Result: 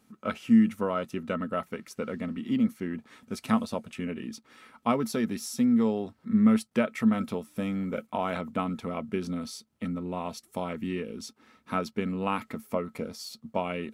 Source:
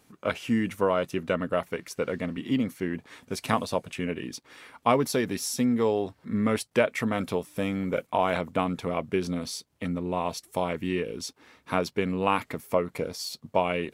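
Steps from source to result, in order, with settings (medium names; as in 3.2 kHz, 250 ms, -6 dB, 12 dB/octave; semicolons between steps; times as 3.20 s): small resonant body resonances 220/1300 Hz, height 14 dB, ringing for 100 ms; trim -6 dB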